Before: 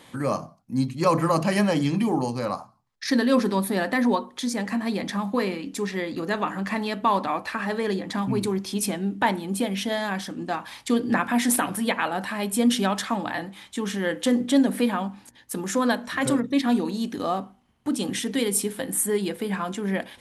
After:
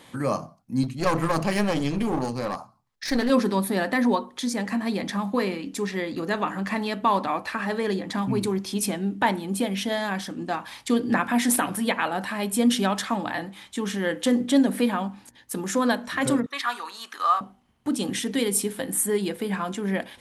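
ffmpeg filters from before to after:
-filter_complex "[0:a]asettb=1/sr,asplit=3[a][b][c];[a]atrim=end=0.834[d];[b]atrim=start=0.83:end=3.3,asetpts=PTS-STARTPTS,afade=t=in:d=0.004:c=qsin,afade=t=out:st=2.466:d=0.004:c=qsin,aeval=exprs='clip(val(0),-1,0.0398)':c=same[e];[c]atrim=start=3.296[f];[d][e]acrossfade=d=0.004:c1=hsin:c2=qsin[g];[g][f]acrossfade=d=0.004:c1=qsin:c2=hsin,asettb=1/sr,asplit=3[h][i][j];[h]atrim=end=16.464[k];[i]atrim=start=16.46:end=17.41,asetpts=PTS-STARTPTS,afade=t=in:d=0.004:c=qsin,afade=t=out:st=0.946:d=0.004:c=qsin,highpass=f=1.2k:t=q:w=3.7[l];[j]atrim=start=17.406[m];[k][l]acrossfade=d=0.004:c1=hsin:c2=qsin[n];[n][m]acrossfade=d=0.004:c1=qsin:c2=hsin"

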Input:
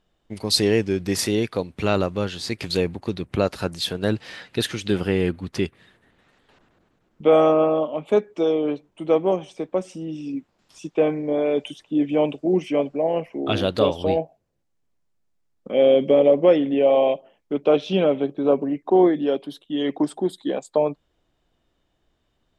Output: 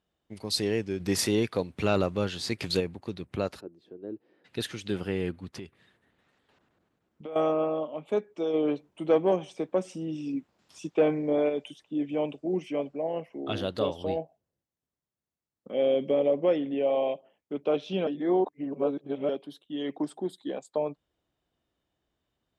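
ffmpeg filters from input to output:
-filter_complex "[0:a]asplit=3[a][b][c];[a]afade=t=out:st=0.99:d=0.02[d];[b]acontrast=47,afade=t=in:st=0.99:d=0.02,afade=t=out:st=2.79:d=0.02[e];[c]afade=t=in:st=2.79:d=0.02[f];[d][e][f]amix=inputs=3:normalize=0,asplit=3[g][h][i];[g]afade=t=out:st=3.59:d=0.02[j];[h]bandpass=f=350:t=q:w=3.8,afade=t=in:st=3.59:d=0.02,afade=t=out:st=4.44:d=0.02[k];[i]afade=t=in:st=4.44:d=0.02[l];[j][k][l]amix=inputs=3:normalize=0,asettb=1/sr,asplit=3[m][n][o];[m]atrim=end=5.554[p];[n]atrim=start=5.55:end=7.36,asetpts=PTS-STARTPTS,afade=t=in:d=0.004:c=qsin,afade=t=out:st=1.806:d=0.004:c=qsin,acompressor=threshold=-27dB:ratio=6:attack=3.2:release=140:knee=1:detection=peak[q];[o]atrim=start=7.356[r];[p][q]acrossfade=d=0.004:c1=hsin:c2=qsin[s];[s][r]acrossfade=d=0.004:c1=qsin:c2=hsin,asplit=3[t][u][v];[t]afade=t=out:st=8.53:d=0.02[w];[u]acontrast=57,afade=t=in:st=8.53:d=0.02,afade=t=out:st=11.48:d=0.02[x];[v]afade=t=in:st=11.48:d=0.02[y];[w][x][y]amix=inputs=3:normalize=0,asettb=1/sr,asplit=3[z][aa][ab];[z]atrim=end=13.054[ac];[aa]atrim=start=13.05:end=15.79,asetpts=PTS-STARTPTS,afade=t=in:d=0.004:c=qsin,afade=t=out:st=2.736:d=0.004:c=qsin,bandreject=f=2.4k:w=12[ad];[ab]atrim=start=15.786[ae];[ac][ad]acrossfade=d=0.004:c1=hsin:c2=qsin[af];[af][ae]acrossfade=d=0.004:c1=qsin:c2=hsin,asplit=3[ag][ah][ai];[ag]atrim=end=18.072[aj];[ah]atrim=start=18.068:end=19.292,asetpts=PTS-STARTPTS,areverse[ak];[ai]atrim=start=19.288[al];[aj][ak]acrossfade=d=0.004:c1=hsin:c2=hsin[am];[am][al]acrossfade=d=0.004:c1=hsin:c2=hsin,highpass=56,volume=-9dB"

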